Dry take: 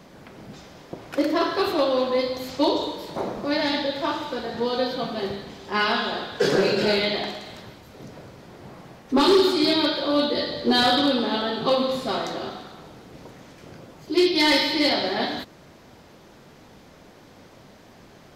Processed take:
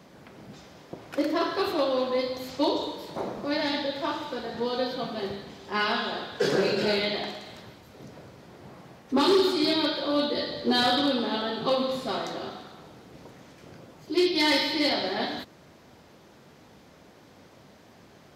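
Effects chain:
high-pass filter 57 Hz
level −4 dB

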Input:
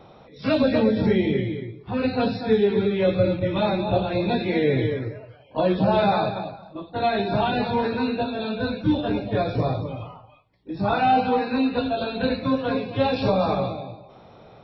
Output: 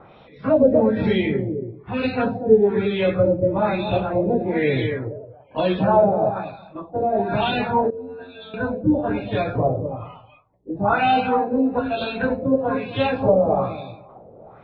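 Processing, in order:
0:07.90–0:08.54: stiff-string resonator 88 Hz, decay 0.62 s, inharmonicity 0.002
auto-filter low-pass sine 1.1 Hz 500–3,300 Hz

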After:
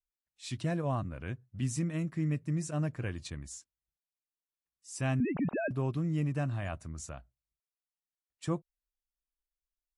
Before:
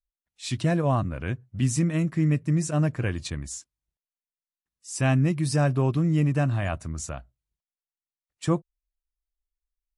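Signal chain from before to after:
0:05.20–0:05.71: three sine waves on the formant tracks
level −9 dB

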